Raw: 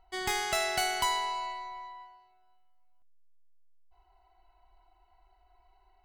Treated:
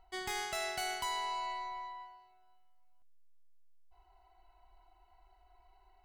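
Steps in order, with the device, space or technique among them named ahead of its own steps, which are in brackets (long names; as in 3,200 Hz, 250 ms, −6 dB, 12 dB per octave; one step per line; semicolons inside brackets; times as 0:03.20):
compression on the reversed sound (reversed playback; downward compressor 5 to 1, threshold −35 dBFS, peak gain reduction 9.5 dB; reversed playback)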